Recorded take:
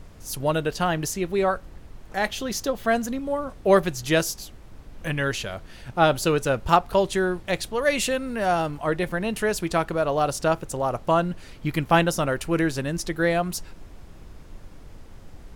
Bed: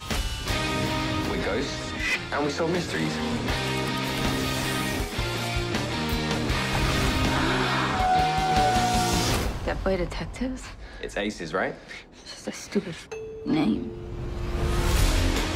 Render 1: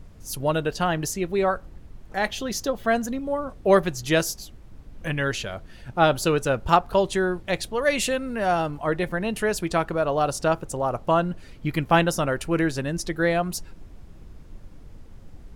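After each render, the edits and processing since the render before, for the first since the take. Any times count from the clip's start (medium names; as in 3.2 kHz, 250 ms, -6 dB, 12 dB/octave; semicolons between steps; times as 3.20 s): noise reduction 6 dB, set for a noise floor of -45 dBFS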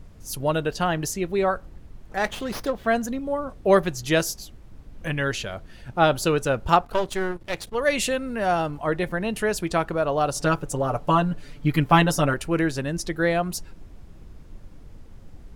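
2.17–2.87 s: sliding maximum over 5 samples; 6.85–7.75 s: partial rectifier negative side -12 dB; 10.35–12.34 s: comb 6.9 ms, depth 88%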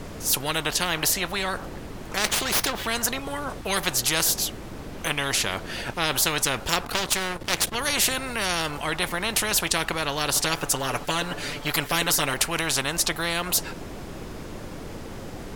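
spectrum-flattening compressor 4:1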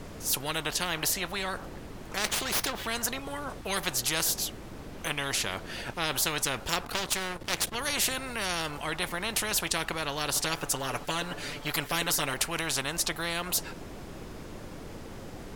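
trim -5.5 dB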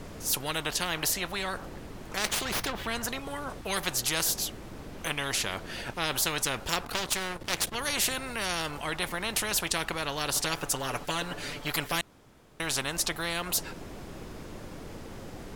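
2.45–3.09 s: tone controls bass +3 dB, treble -5 dB; 12.01–12.60 s: room tone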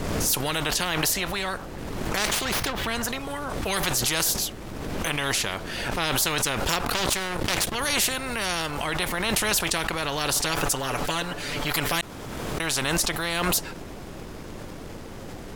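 waveshaping leveller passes 1; swell ahead of each attack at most 25 dB/s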